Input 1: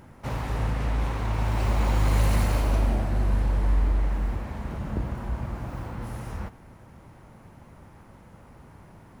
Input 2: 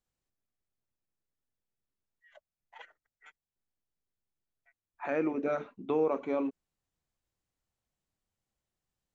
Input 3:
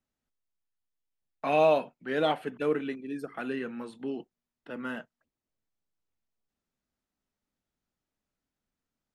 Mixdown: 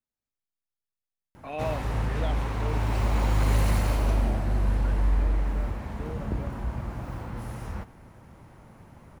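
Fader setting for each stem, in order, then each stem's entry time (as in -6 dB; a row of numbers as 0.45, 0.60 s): -1.0, -14.0, -10.0 dB; 1.35, 0.10, 0.00 s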